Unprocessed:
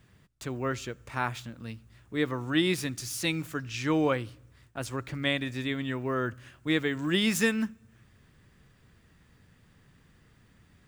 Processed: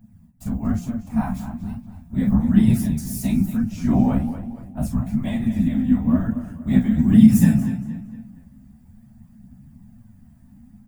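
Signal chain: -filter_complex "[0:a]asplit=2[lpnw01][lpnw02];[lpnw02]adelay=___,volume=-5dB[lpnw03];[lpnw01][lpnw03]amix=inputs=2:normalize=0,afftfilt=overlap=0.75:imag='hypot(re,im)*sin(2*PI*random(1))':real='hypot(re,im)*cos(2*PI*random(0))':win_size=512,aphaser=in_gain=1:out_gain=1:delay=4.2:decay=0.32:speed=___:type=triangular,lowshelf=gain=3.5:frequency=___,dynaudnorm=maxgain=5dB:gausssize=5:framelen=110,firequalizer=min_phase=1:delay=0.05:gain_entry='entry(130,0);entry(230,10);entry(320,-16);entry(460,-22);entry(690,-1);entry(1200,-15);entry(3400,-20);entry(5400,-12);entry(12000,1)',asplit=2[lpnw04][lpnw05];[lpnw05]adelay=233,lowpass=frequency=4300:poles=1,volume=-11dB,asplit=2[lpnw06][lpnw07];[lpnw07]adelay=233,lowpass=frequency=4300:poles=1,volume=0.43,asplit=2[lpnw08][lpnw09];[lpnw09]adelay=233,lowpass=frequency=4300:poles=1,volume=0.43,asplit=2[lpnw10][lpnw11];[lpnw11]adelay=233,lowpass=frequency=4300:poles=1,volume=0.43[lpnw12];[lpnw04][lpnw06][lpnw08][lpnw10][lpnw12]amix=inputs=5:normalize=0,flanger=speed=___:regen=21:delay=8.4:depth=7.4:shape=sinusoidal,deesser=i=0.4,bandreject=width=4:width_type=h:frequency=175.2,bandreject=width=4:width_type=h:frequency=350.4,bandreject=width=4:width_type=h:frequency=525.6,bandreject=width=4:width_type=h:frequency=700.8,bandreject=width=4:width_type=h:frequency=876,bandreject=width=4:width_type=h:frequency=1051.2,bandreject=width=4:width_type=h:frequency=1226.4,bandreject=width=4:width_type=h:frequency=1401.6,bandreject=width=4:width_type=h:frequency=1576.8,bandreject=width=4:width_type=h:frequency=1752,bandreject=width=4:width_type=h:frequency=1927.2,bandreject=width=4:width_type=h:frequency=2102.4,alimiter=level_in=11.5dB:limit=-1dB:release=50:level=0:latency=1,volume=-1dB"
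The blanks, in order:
38, 0.42, 330, 1.1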